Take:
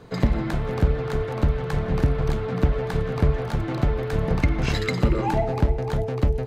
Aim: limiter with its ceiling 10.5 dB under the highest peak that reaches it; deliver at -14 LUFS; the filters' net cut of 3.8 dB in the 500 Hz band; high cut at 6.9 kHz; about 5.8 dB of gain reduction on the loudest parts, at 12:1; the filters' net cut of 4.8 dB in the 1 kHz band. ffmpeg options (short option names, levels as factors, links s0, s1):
-af "lowpass=6900,equalizer=f=500:t=o:g=-3.5,equalizer=f=1000:t=o:g=-5,acompressor=threshold=0.1:ratio=12,volume=7.5,alimiter=limit=0.562:level=0:latency=1"